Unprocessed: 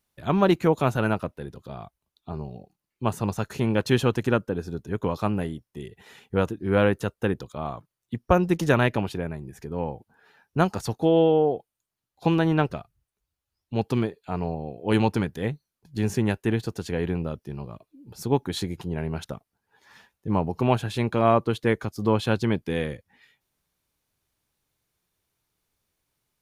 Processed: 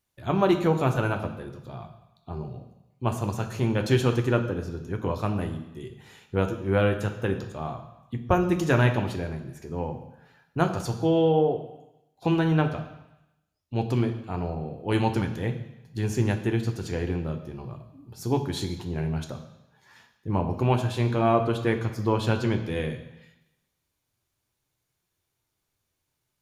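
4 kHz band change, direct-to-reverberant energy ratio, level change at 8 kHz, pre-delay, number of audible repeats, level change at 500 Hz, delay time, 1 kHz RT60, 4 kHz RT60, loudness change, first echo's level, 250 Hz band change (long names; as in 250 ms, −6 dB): −1.5 dB, 4.5 dB, −0.5 dB, 3 ms, no echo audible, −2.0 dB, no echo audible, 1.0 s, 0.95 s, −1.0 dB, no echo audible, −1.5 dB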